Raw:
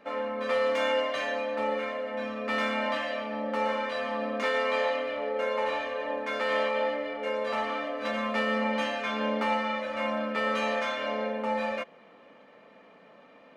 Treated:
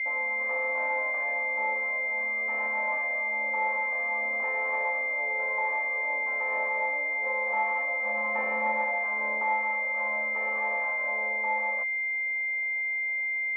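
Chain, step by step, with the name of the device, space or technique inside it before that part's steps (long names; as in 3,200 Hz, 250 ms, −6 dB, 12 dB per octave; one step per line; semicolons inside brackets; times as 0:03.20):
dynamic equaliser 350 Hz, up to −7 dB, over −45 dBFS, Q 1.2
0:07.23–0:09.04: comb filter 5.5 ms, depth 99%
toy sound module (linearly interpolated sample-rate reduction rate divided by 8×; switching amplifier with a slow clock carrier 2,100 Hz; loudspeaker in its box 500–4,800 Hz, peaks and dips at 500 Hz −3 dB, 900 Hz +8 dB, 1,400 Hz −4 dB, 2,100 Hz +9 dB, 4,000 Hz −8 dB)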